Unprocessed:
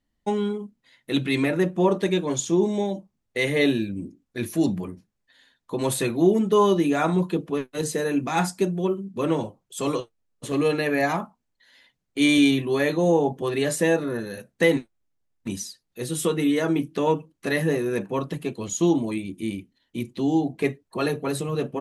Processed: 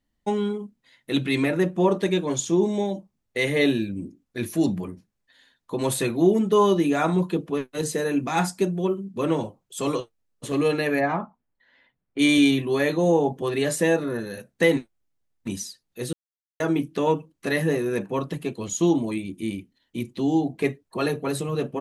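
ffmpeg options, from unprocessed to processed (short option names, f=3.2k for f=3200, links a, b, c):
-filter_complex "[0:a]asplit=3[a][b][c];[a]afade=t=out:st=10.99:d=0.02[d];[b]lowpass=2k,afade=t=in:st=10.99:d=0.02,afade=t=out:st=12.18:d=0.02[e];[c]afade=t=in:st=12.18:d=0.02[f];[d][e][f]amix=inputs=3:normalize=0,asplit=3[g][h][i];[g]atrim=end=16.13,asetpts=PTS-STARTPTS,afade=t=out:st=16.126:d=0.004:c=hsin[j];[h]atrim=start=16.13:end=16.6,asetpts=PTS-STARTPTS,volume=0[k];[i]atrim=start=16.6,asetpts=PTS-STARTPTS,afade=t=in:d=0.004:c=hsin[l];[j][k][l]concat=n=3:v=0:a=1"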